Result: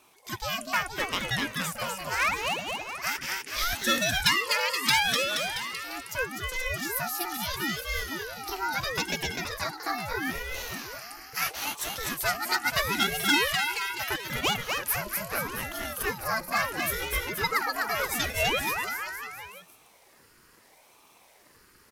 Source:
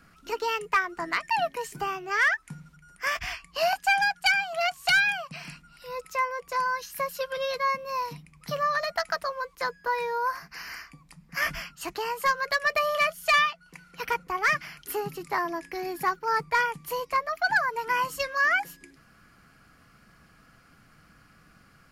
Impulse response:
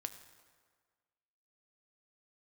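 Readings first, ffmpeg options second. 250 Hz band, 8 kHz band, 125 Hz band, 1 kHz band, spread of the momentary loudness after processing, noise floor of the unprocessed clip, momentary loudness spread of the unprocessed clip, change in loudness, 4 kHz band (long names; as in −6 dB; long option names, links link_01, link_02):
+7.0 dB, +9.0 dB, +7.5 dB, −4.5 dB, 11 LU, −59 dBFS, 14 LU, −1.0 dB, +5.0 dB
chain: -af "aecho=1:1:250|475|677.5|859.8|1024:0.631|0.398|0.251|0.158|0.1,crystalizer=i=3.5:c=0,aeval=exprs='val(0)*sin(2*PI*610*n/s+610*0.7/0.76*sin(2*PI*0.76*n/s))':channel_layout=same,volume=-3.5dB"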